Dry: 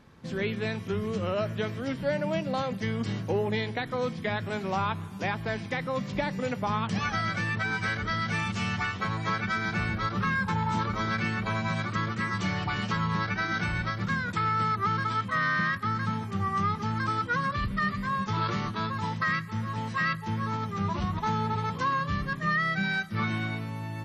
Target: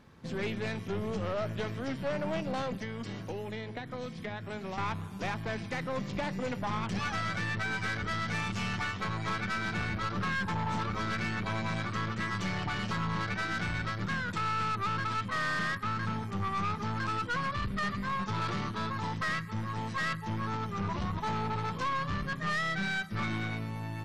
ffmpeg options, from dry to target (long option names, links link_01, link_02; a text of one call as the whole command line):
ffmpeg -i in.wav -filter_complex "[0:a]asettb=1/sr,asplit=3[link_01][link_02][link_03];[link_01]atrim=end=2.754[link_04];[link_02]atrim=start=2.75:end=4.78,asetpts=PTS-STARTPTS,afade=type=in:duration=0.004:curve=qsin,afade=type=out:start_time=2.026:duration=0.004:curve=qsin,acrossover=split=250|1900[link_05][link_06][link_07];[link_05]acompressor=threshold=-40dB:ratio=4[link_08];[link_06]acompressor=threshold=-38dB:ratio=4[link_09];[link_07]acompressor=threshold=-47dB:ratio=4[link_10];[link_08][link_09][link_10]amix=inputs=3:normalize=0[link_11];[link_03]atrim=start=4.776[link_12];[link_04][link_11]acrossfade=duration=0.004:curve1=hsin:curve2=qsin[link_13];[link_13][link_12]acrossfade=duration=0.004:curve1=qsin:curve2=hsin,aeval=exprs='(tanh(25.1*val(0)+0.45)-tanh(0.45))/25.1':channel_layout=same" out.wav